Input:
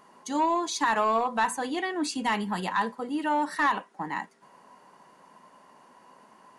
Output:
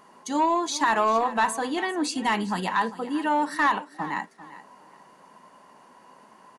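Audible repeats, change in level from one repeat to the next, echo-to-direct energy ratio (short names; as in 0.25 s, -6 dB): 2, -12.0 dB, -16.0 dB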